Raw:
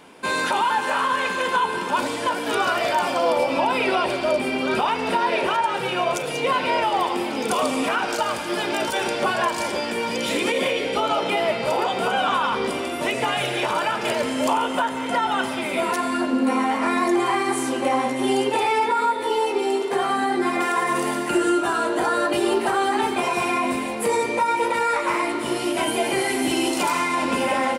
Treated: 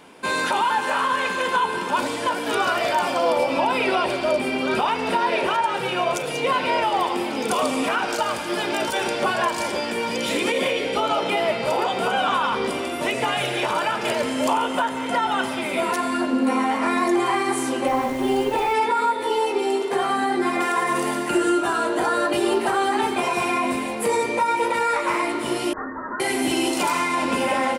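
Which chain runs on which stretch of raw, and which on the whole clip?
0:17.86–0:18.73: high-shelf EQ 3,200 Hz −9 dB + background noise pink −42 dBFS
0:25.73–0:26.20: Butterworth high-pass 1,600 Hz 72 dB per octave + voice inversion scrambler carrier 3,400 Hz
whole clip: no processing

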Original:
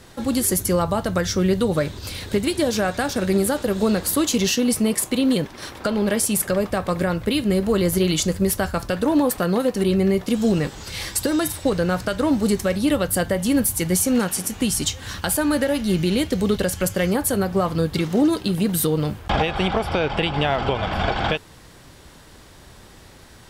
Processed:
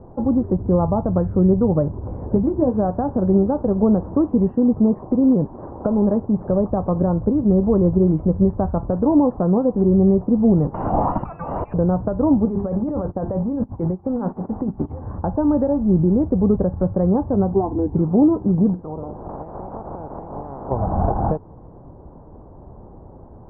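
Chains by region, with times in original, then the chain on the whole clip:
0:02.05–0:02.75: notch filter 2,500 Hz, Q 15 + double-tracking delay 16 ms −7 dB
0:10.74–0:11.74: voice inversion scrambler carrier 2,900 Hz + envelope flattener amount 100%
0:12.45–0:14.99: tilt shelving filter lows −4 dB, about 890 Hz + mains-hum notches 50/100/150/200/250/300/350/400 Hz + compressor whose output falls as the input rises −26 dBFS
0:17.53–0:17.95: high-pass filter 160 Hz 6 dB per octave + low-shelf EQ 310 Hz +11.5 dB + phaser with its sweep stopped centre 830 Hz, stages 8
0:18.73–0:20.70: ceiling on every frequency bin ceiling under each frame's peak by 18 dB + downward compressor 12 to 1, threshold −30 dBFS + double-tracking delay 50 ms −13 dB
whole clip: Butterworth low-pass 940 Hz 36 dB per octave; dynamic equaliser 520 Hz, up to −5 dB, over −30 dBFS, Q 0.84; level +6 dB

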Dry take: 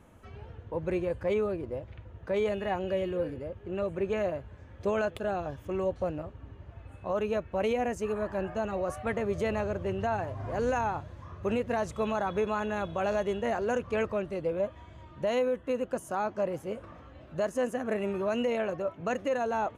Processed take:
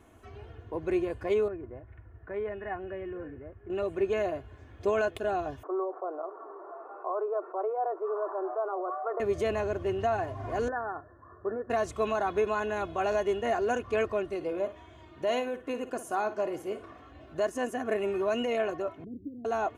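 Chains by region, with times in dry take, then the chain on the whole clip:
0:01.48–0:03.70: transistor ladder low-pass 2,100 Hz, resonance 45% + low-shelf EQ 170 Hz +8.5 dB
0:05.63–0:09.20: Chebyshev band-pass filter 360–1,300 Hz, order 4 + spectral tilt +3.5 dB per octave + envelope flattener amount 50%
0:10.68–0:11.70: Chebyshev low-pass with heavy ripple 1,800 Hz, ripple 6 dB + spectral tilt +2 dB per octave + one half of a high-frequency compander decoder only
0:14.35–0:17.11: low-shelf EQ 84 Hz −10 dB + flutter between parallel walls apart 9.7 metres, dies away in 0.27 s
0:19.04–0:19.45: inverse Chebyshev band-stop filter 870–6,600 Hz, stop band 60 dB + parametric band 9,900 Hz −10 dB 2.3 octaves
whole clip: low-shelf EQ 63 Hz −8.5 dB; comb filter 2.8 ms, depth 61%

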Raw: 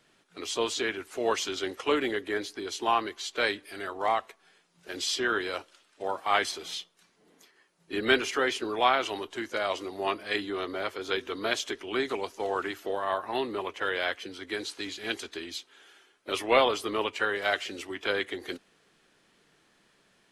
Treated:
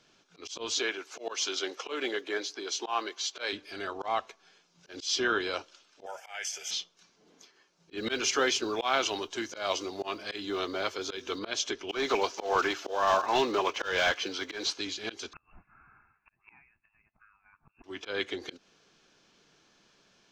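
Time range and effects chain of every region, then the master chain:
0:00.79–0:03.53: high-pass filter 380 Hz + noise that follows the level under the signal 34 dB
0:06.06–0:06.71: spectral tilt +4.5 dB per octave + downward compressor 10 to 1, threshold −26 dBFS + phaser with its sweep stopped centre 1,100 Hz, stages 6
0:07.97–0:11.39: high-shelf EQ 5,200 Hz +7.5 dB + noise that follows the level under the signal 29 dB + hum removal 61.87 Hz, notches 2
0:11.89–0:14.73: one scale factor per block 5 bits + high-shelf EQ 3,200 Hz +8.5 dB + mid-hump overdrive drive 16 dB, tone 1,400 Hz, clips at −12 dBFS
0:15.33–0:17.84: voice inversion scrambler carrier 3,000 Hz + phaser with its sweep stopped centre 1,300 Hz, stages 4 + gate with flip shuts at −32 dBFS, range −32 dB
whole clip: high shelf with overshoot 7,700 Hz −9.5 dB, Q 3; notch filter 1,900 Hz, Q 7.7; volume swells 161 ms

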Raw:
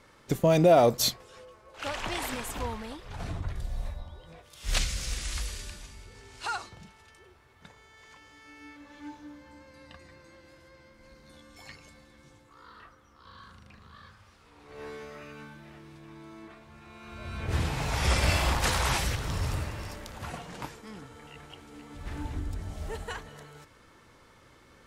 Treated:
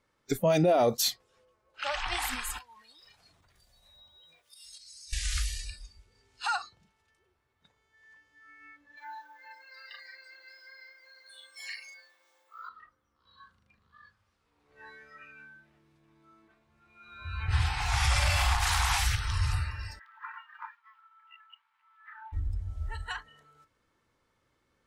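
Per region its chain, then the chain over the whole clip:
0:02.58–0:05.13: spectral tilt +3 dB per octave + downward compressor 20 to 1, threshold −44 dBFS
0:08.97–0:12.69: mu-law and A-law mismatch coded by mu + high-pass filter 510 Hz 24 dB per octave + double-tracking delay 40 ms −3 dB
0:19.99–0:22.33: Butterworth high-pass 890 Hz 72 dB per octave + high-frequency loss of the air 460 metres + leveller curve on the samples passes 1
whole clip: noise reduction from a noise print of the clip's start 20 dB; brickwall limiter −19.5 dBFS; level +3 dB

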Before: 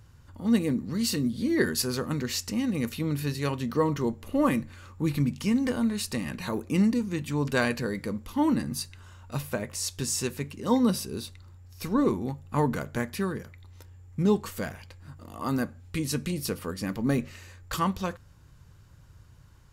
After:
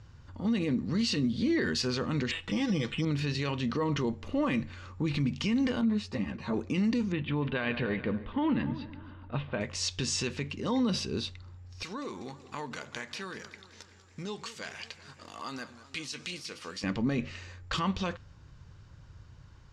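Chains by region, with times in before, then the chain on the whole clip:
0:02.31–0:03.05: comb filter 6.1 ms, depth 64% + bad sample-rate conversion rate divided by 8×, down filtered, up hold + one half of a high-frequency compander encoder only
0:05.81–0:06.54: high-pass filter 45 Hz + high-shelf EQ 2,100 Hz −10.5 dB + string-ensemble chorus
0:07.12–0:09.61: Chebyshev low-pass filter 3,500 Hz, order 4 + echo machine with several playback heads 142 ms, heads first and second, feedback 41%, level −20.5 dB + one half of a high-frequency compander decoder only
0:11.83–0:16.84: spectral tilt +4 dB per octave + downward compressor 3 to 1, threshold −39 dBFS + feedback echo with a swinging delay time 190 ms, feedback 66%, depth 159 cents, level −15 dB
whole clip: dynamic equaliser 2,900 Hz, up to +7 dB, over −51 dBFS, Q 1.4; low-pass filter 6,200 Hz 24 dB per octave; brickwall limiter −22.5 dBFS; level +1.5 dB

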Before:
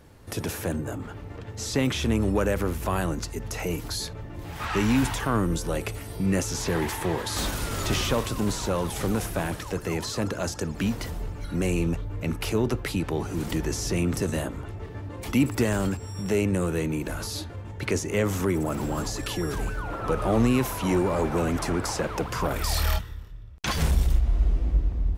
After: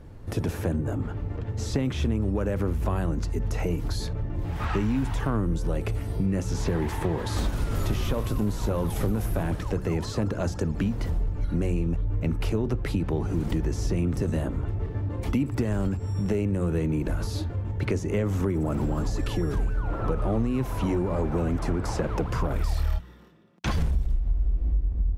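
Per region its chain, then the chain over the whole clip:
0:07.75–0:09.43: parametric band 12,000 Hz +12 dB 0.37 octaves + double-tracking delay 19 ms −13 dB
0:23.00–0:23.65: Butterworth high-pass 190 Hz + comb filter 5.7 ms, depth 35%
whole clip: spectral tilt −2.5 dB per octave; hum removal 61.45 Hz, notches 3; downward compressor 6 to 1, threshold −22 dBFS

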